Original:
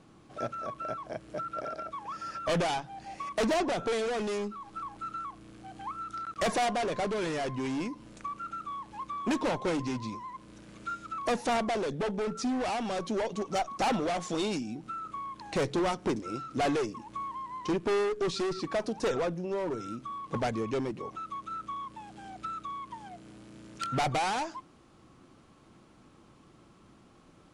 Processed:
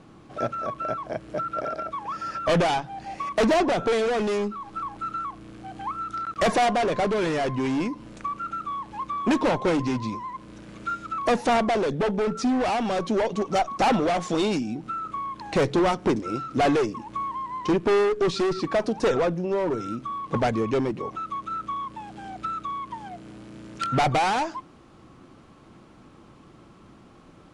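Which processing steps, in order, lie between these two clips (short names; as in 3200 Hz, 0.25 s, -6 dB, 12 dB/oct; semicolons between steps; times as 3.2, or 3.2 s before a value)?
high shelf 5000 Hz -7.5 dB; gain +7.5 dB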